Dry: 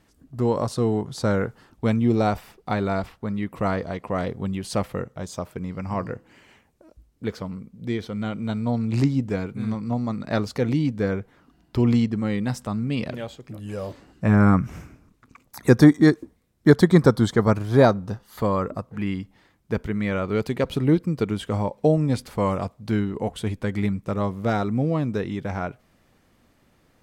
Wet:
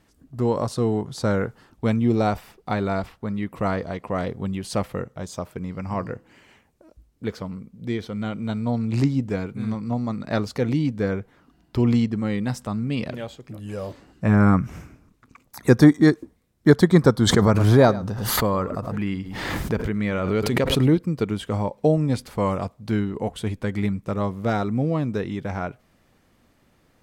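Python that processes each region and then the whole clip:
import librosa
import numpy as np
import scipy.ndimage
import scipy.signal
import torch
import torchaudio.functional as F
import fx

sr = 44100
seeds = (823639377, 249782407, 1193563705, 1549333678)

y = fx.chain(x, sr, fx.echo_single(ms=106, db=-18.0),
    fx.pre_swell(db_per_s=31.0), at=(17.23, 20.98))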